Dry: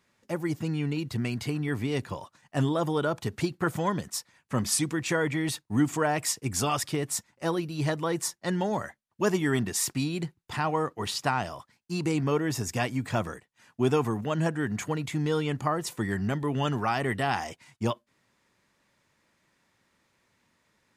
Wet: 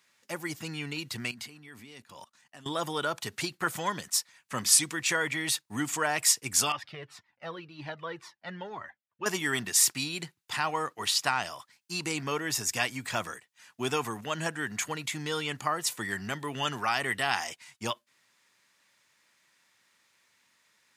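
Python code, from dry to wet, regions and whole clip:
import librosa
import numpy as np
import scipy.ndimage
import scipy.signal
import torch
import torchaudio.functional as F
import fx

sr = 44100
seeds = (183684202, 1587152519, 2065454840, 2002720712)

y = fx.chain(x, sr, fx.level_steps(step_db=22),
    fx.peak_eq(hz=230.0, db=9.5, octaves=0.29), at=(1.31, 2.66))
y = fx.chain(y, sr, fx.air_absorb(metres=340.0),
    fx.comb_cascade(direction='falling', hz=1.9), at=(6.72, 9.26))
y = scipy.signal.sosfilt(scipy.signal.butter(2, 90.0, 'highpass', fs=sr, output='sos'), y)
y = fx.tilt_shelf(y, sr, db=-8.5, hz=890.0)
y = y * librosa.db_to_amplitude(-2.0)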